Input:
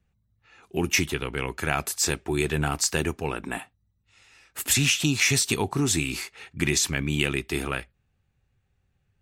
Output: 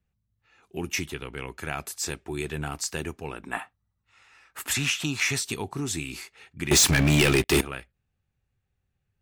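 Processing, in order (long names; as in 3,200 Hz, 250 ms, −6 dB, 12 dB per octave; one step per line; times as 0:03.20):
0:03.52–0:05.40: parametric band 1,200 Hz +14.5 dB → +7.5 dB 1.8 octaves
0:06.71–0:07.61: leveller curve on the samples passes 5
level −6.5 dB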